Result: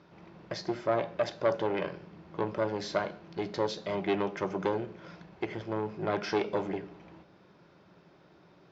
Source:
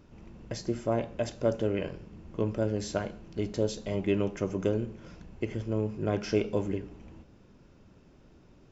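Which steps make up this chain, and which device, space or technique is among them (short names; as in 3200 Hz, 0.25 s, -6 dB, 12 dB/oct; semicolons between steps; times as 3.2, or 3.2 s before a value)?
guitar amplifier (tube stage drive 23 dB, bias 0.45; tone controls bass -13 dB, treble +2 dB; speaker cabinet 100–4400 Hz, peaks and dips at 170 Hz +9 dB, 240 Hz -10 dB, 470 Hz -5 dB, 2800 Hz -7 dB); gain +7.5 dB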